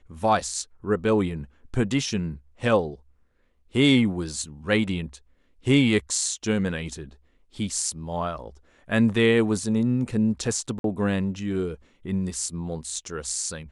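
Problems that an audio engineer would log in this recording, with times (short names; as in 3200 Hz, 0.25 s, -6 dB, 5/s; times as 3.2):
10.79–10.84 gap 52 ms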